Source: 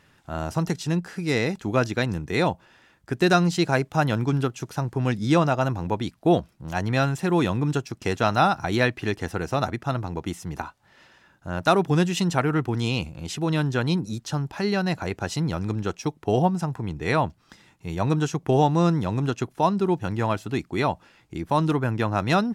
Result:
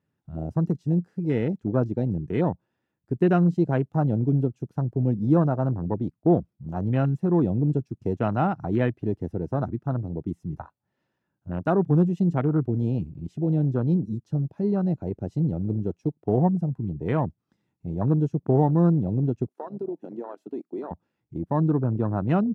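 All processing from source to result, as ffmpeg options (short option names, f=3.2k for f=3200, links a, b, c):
-filter_complex "[0:a]asettb=1/sr,asplit=3[a][b][c];[a]atrim=end=19.484[d];[b]atrim=start=19.48:end=20.91,asetpts=PTS-STARTPTS,afade=t=in:d=0.004:c=qsin,afade=t=out:st=1.426:d=0.004:c=qsin,highpass=f=280:w=0.5412,highpass=f=280:w=1.3066,acompressor=threshold=-26dB:ratio=6:attack=3.2:release=140:knee=1:detection=peak[e];[c]atrim=start=20.906[f];[d][e]acrossfade=d=0.004:c1=hsin:c2=qsin[g];[g][f]acrossfade=d=0.004:c1=qsin:c2=hsin,afwtdn=0.0501,highpass=100,tiltshelf=f=730:g=8.5,volume=-5dB"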